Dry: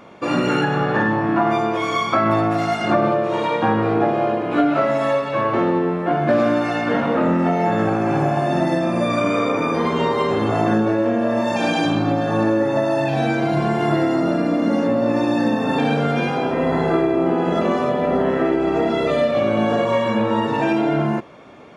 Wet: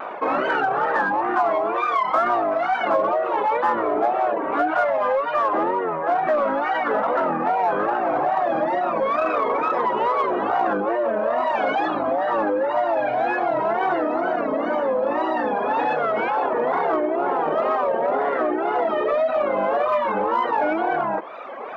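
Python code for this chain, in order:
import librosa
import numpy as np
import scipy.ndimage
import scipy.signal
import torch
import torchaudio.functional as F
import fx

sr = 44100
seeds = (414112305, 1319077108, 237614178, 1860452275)

p1 = scipy.signal.sosfilt(scipy.signal.butter(2, 810.0, 'highpass', fs=sr, output='sos'), x)
p2 = fx.dereverb_blind(p1, sr, rt60_s=0.92)
p3 = scipy.signal.sosfilt(scipy.signal.butter(2, 1100.0, 'lowpass', fs=sr, output='sos'), p2)
p4 = 10.0 ** (-30.5 / 20.0) * np.tanh(p3 / 10.0 ** (-30.5 / 20.0))
p5 = p3 + F.gain(torch.from_numpy(p4), -8.5).numpy()
p6 = fx.wow_flutter(p5, sr, seeds[0], rate_hz=2.1, depth_cents=150.0)
p7 = fx.env_flatten(p6, sr, amount_pct=50)
y = F.gain(torch.from_numpy(p7), 3.5).numpy()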